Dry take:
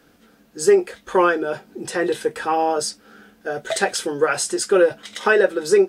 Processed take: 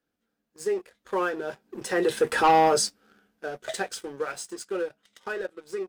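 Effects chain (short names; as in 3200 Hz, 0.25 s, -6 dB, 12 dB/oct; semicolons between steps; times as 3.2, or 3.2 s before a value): Doppler pass-by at 2.5, 6 m/s, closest 1.3 m; sample leveller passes 2; gain -2 dB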